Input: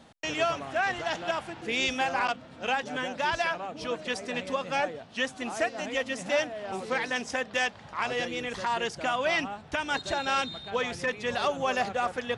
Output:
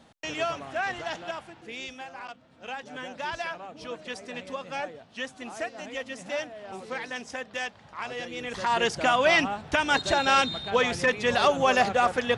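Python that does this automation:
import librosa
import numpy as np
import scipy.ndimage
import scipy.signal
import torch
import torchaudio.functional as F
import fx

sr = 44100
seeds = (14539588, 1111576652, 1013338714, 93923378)

y = fx.gain(x, sr, db=fx.line((1.04, -2.0), (2.13, -14.0), (3.11, -5.0), (8.24, -5.0), (8.84, 6.0)))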